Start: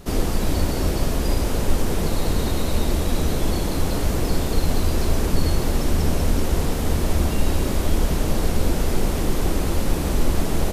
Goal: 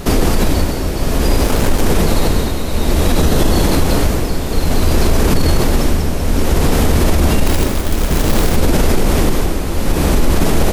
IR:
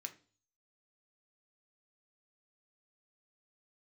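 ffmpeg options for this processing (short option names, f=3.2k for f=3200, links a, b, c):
-filter_complex "[0:a]asplit=3[a][b][c];[a]afade=t=out:st=1.39:d=0.02[d];[b]aeval=exprs='sgn(val(0))*max(abs(val(0))-0.0376,0)':c=same,afade=t=in:st=1.39:d=0.02,afade=t=out:st=1.83:d=0.02[e];[c]afade=t=in:st=1.83:d=0.02[f];[d][e][f]amix=inputs=3:normalize=0,asettb=1/sr,asplit=3[g][h][i];[g]atrim=end=3.194[j];[h]atrim=start=3.19:end=3.63,asetpts=PTS-STARTPTS,afade=t=in:d=0.004:c=qsin,afade=t=out:st=0.436:d=0.004:c=qsin,bandreject=f=2.3k:w=10[k];[i]atrim=start=3.626[l];[j][k]acrossfade=d=0.004:c1=hsin:c2=qsin[m];[m][l]acrossfade=d=0.004:c1=qsin:c2=hsin,asettb=1/sr,asplit=3[n][o][p];[n]atrim=end=7.464[q];[o]atrim=start=7.46:end=8.56,asetpts=PTS-STARTPTS,afade=t=in:d=0.004:c=qsin,afade=t=out:st=1.096:d=0.004:c=qsin,acrusher=bits=3:mode=log:mix=0:aa=0.000001[r];[p]atrim=start=8.556[s];[q][r]acrossfade=d=0.004:c1=hsin:c2=qsin[t];[t][s]acrossfade=d=0.004:c1=qsin:c2=hsin,tremolo=f=0.57:d=0.76,asplit=2[u][v];[1:a]atrim=start_sample=2205,lowpass=4.3k[w];[v][w]afir=irnorm=-1:irlink=0,volume=-10dB[x];[u][x]amix=inputs=2:normalize=0,alimiter=level_in=17.5dB:limit=-1dB:release=50:level=0:latency=1,volume=-2.5dB"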